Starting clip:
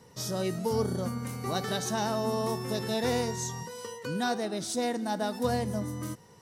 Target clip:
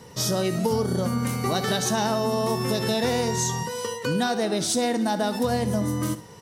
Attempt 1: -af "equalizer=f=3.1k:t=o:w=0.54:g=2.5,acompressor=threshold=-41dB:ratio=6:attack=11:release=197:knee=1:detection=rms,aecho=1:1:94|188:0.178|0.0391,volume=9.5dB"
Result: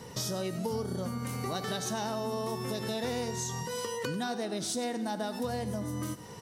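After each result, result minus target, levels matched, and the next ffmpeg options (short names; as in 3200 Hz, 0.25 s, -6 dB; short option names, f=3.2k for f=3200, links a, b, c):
compressor: peak gain reduction +9.5 dB; echo 27 ms late
-af "equalizer=f=3.1k:t=o:w=0.54:g=2.5,acompressor=threshold=-29.5dB:ratio=6:attack=11:release=197:knee=1:detection=rms,aecho=1:1:94|188:0.178|0.0391,volume=9.5dB"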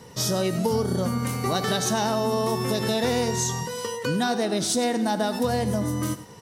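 echo 27 ms late
-af "equalizer=f=3.1k:t=o:w=0.54:g=2.5,acompressor=threshold=-29.5dB:ratio=6:attack=11:release=197:knee=1:detection=rms,aecho=1:1:67|134:0.178|0.0391,volume=9.5dB"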